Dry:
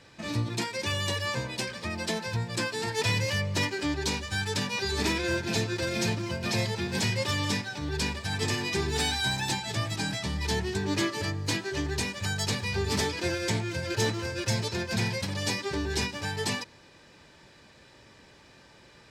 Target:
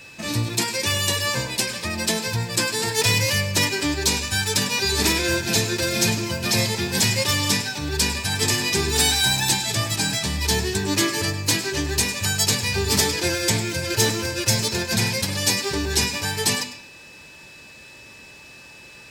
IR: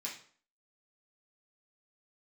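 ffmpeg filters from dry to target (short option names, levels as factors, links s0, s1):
-filter_complex "[0:a]aemphasis=mode=production:type=50fm,aeval=exprs='val(0)+0.00398*sin(2*PI*2600*n/s)':c=same,asplit=2[s0][s1];[1:a]atrim=start_sample=2205,adelay=101[s2];[s1][s2]afir=irnorm=-1:irlink=0,volume=0.282[s3];[s0][s3]amix=inputs=2:normalize=0,volume=1.88"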